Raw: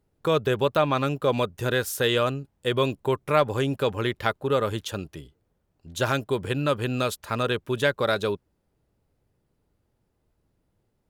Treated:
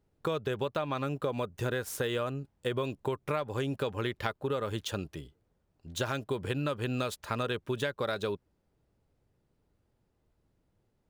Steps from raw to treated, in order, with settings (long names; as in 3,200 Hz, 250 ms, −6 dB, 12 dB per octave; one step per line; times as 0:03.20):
running median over 3 samples
0:00.97–0:02.84: dynamic equaliser 3,900 Hz, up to −5 dB, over −40 dBFS, Q 0.86
downward compressor 10 to 1, threshold −26 dBFS, peak gain reduction 12 dB
level −2 dB